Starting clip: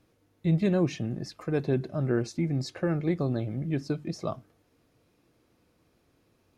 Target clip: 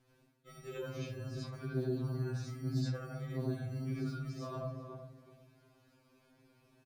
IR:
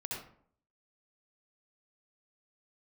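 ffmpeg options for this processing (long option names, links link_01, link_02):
-filter_complex "[0:a]bandreject=frequency=60:width_type=h:width=6,bandreject=frequency=120:width_type=h:width=6,acrossover=split=200[link_01][link_02];[link_01]acrusher=samples=29:mix=1:aa=0.000001[link_03];[link_03][link_02]amix=inputs=2:normalize=0,asplit=2[link_04][link_05];[link_05]adelay=364,lowpass=frequency=900:poles=1,volume=-11.5dB,asplit=2[link_06][link_07];[link_07]adelay=364,lowpass=frequency=900:poles=1,volume=0.27,asplit=2[link_08][link_09];[link_09]adelay=364,lowpass=frequency=900:poles=1,volume=0.27[link_10];[link_04][link_06][link_08][link_10]amix=inputs=4:normalize=0[link_11];[1:a]atrim=start_sample=2205[link_12];[link_11][link_12]afir=irnorm=-1:irlink=0,asetrate=42336,aresample=44100,areverse,acompressor=threshold=-35dB:ratio=10,areverse,afftfilt=real='re*2.45*eq(mod(b,6),0)':imag='im*2.45*eq(mod(b,6),0)':win_size=2048:overlap=0.75,volume=2.5dB"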